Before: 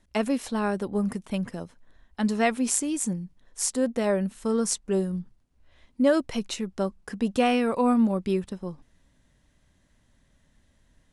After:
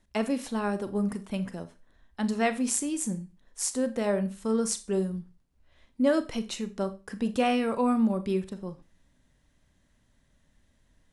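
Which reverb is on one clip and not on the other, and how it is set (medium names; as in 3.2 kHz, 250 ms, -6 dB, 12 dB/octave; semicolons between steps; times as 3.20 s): Schroeder reverb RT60 0.3 s, combs from 28 ms, DRR 11 dB; trim -3 dB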